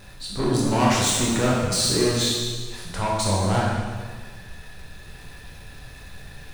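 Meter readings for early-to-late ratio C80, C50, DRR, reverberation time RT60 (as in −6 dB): 2.0 dB, −0.5 dB, −5.0 dB, 1.6 s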